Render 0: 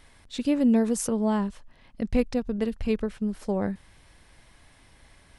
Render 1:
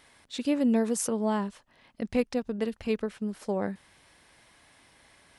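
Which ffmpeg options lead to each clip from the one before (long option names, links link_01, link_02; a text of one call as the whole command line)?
ffmpeg -i in.wav -af "highpass=frequency=280:poles=1" out.wav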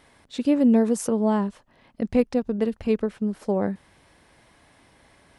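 ffmpeg -i in.wav -af "tiltshelf=frequency=1200:gain=4.5,volume=2.5dB" out.wav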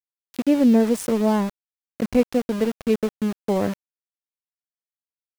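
ffmpeg -i in.wav -af "aeval=exprs='val(0)*gte(abs(val(0)),0.0316)':channel_layout=same,volume=2dB" out.wav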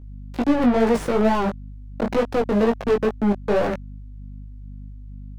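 ffmpeg -i in.wav -filter_complex "[0:a]asplit=2[link_01][link_02];[link_02]highpass=frequency=720:poles=1,volume=35dB,asoftclip=type=tanh:threshold=-6.5dB[link_03];[link_01][link_03]amix=inputs=2:normalize=0,lowpass=frequency=1200:poles=1,volume=-6dB,aeval=exprs='val(0)+0.0224*(sin(2*PI*50*n/s)+sin(2*PI*2*50*n/s)/2+sin(2*PI*3*50*n/s)/3+sin(2*PI*4*50*n/s)/4+sin(2*PI*5*50*n/s)/5)':channel_layout=same,flanger=delay=17:depth=3.7:speed=2.2,volume=-2dB" out.wav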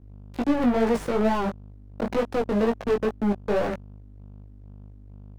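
ffmpeg -i in.wav -af "aeval=exprs='sgn(val(0))*max(abs(val(0))-0.00668,0)':channel_layout=same,volume=-3.5dB" out.wav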